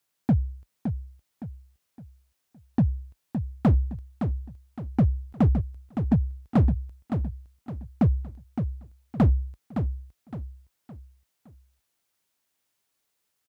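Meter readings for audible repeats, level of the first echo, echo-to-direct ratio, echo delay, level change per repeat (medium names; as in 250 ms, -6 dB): 4, -7.5 dB, -7.0 dB, 564 ms, -8.5 dB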